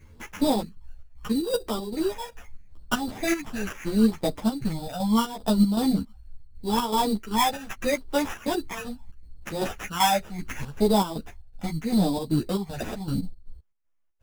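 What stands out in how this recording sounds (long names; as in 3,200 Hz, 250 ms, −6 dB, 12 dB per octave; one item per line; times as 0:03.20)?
chopped level 2.6 Hz, depth 60%, duty 65%
phaser sweep stages 12, 0.76 Hz, lowest notch 330–2,900 Hz
aliases and images of a low sample rate 4,300 Hz, jitter 0%
a shimmering, thickened sound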